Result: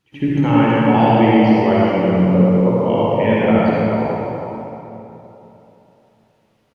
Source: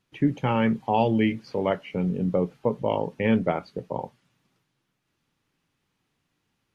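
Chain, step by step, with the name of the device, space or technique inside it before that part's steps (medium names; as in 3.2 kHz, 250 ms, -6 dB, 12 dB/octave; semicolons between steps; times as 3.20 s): reverse echo 81 ms -20 dB; cave (delay 323 ms -9 dB; reverberation RT60 3.2 s, pre-delay 47 ms, DRR -7.5 dB); trim +2 dB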